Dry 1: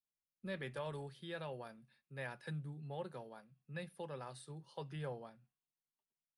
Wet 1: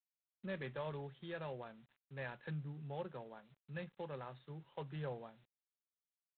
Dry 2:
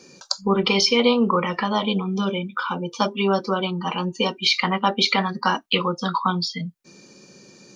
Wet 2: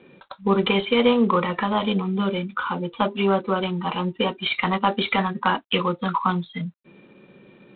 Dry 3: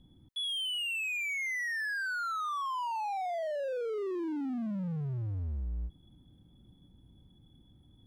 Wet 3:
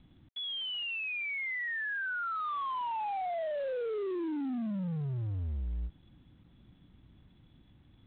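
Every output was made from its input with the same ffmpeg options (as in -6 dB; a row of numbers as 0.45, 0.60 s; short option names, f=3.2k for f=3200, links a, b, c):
-af "aemphasis=mode=reproduction:type=50fm" -ar 8000 -c:a adpcm_g726 -b:a 24k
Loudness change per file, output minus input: 0.0, -1.0, -1.0 LU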